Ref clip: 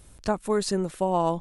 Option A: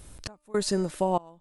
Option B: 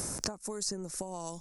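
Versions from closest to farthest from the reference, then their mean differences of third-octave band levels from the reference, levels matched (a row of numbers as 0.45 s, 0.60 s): A, B; 7.5 dB, 10.0 dB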